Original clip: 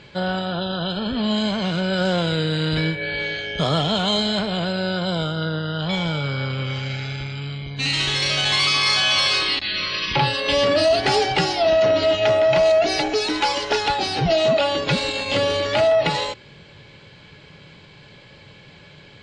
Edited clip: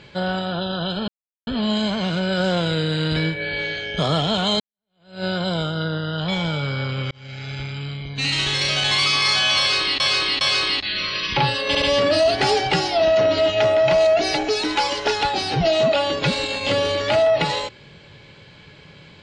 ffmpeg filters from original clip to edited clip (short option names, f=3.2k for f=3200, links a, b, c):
-filter_complex "[0:a]asplit=8[a][b][c][d][e][f][g][h];[a]atrim=end=1.08,asetpts=PTS-STARTPTS,afade=t=out:st=1.076:d=0.004:c=hsin,apad=pad_dur=0.39[i];[b]atrim=start=1.08:end=4.21,asetpts=PTS-STARTPTS,afade=t=in:d=0.004:c=hsin,afade=t=out:st=3.126:d=0.004:c=hsin[j];[c]atrim=start=4.21:end=6.72,asetpts=PTS-STARTPTS,afade=t=in:d=0.64:c=exp,afade=t=out:st=2.506:d=0.004:c=hsin[k];[d]atrim=start=6.72:end=9.612,asetpts=PTS-STARTPTS,afade=t=in:d=0.5[l];[e]atrim=start=9.198:end=9.612[m];[f]atrim=start=9.198:end=10.542[n];[g]atrim=start=10.468:end=10.542[o];[h]atrim=start=10.468[p];[i][j][k][l]concat=n=4:v=0:a=1[q];[q][m]acrossfade=d=0.004:c1=hsin:c2=hsin[r];[r][n]acrossfade=d=0.004:c1=hsin:c2=hsin[s];[s][o]acrossfade=d=0.004:c1=hsin:c2=hsin[t];[t][p]acrossfade=d=0.004:c1=hsin:c2=hsin"